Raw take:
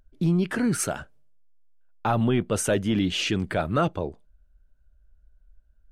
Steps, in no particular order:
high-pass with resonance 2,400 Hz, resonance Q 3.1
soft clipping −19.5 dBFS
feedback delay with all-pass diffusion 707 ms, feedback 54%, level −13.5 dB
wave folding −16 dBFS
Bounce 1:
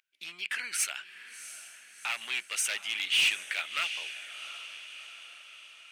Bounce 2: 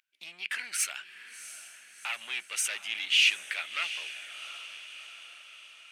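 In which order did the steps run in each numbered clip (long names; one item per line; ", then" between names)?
feedback delay with all-pass diffusion, then wave folding, then high-pass with resonance, then soft clipping
feedback delay with all-pass diffusion, then wave folding, then soft clipping, then high-pass with resonance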